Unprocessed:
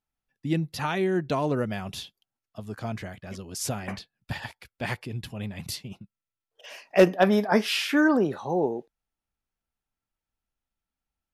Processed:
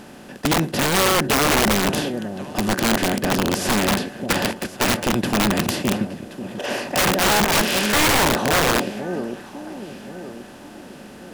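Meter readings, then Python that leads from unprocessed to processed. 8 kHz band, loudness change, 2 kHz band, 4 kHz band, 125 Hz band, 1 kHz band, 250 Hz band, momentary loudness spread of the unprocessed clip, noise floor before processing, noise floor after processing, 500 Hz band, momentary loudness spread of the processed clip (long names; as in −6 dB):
+16.5 dB, +7.0 dB, +10.5 dB, +13.0 dB, +6.5 dB, +10.5 dB, +6.0 dB, 19 LU, below −85 dBFS, −41 dBFS, +4.0 dB, 18 LU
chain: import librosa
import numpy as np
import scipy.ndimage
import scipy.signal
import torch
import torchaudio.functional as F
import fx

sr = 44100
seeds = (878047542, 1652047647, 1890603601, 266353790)

p1 = fx.bin_compress(x, sr, power=0.4)
p2 = fx.peak_eq(p1, sr, hz=220.0, db=7.0, octaves=0.78)
p3 = p2 + fx.echo_alternate(p2, sr, ms=538, hz=800.0, feedback_pct=59, wet_db=-11.0, dry=0)
y = (np.mod(10.0 ** (12.0 / 20.0) * p3 + 1.0, 2.0) - 1.0) / 10.0 ** (12.0 / 20.0)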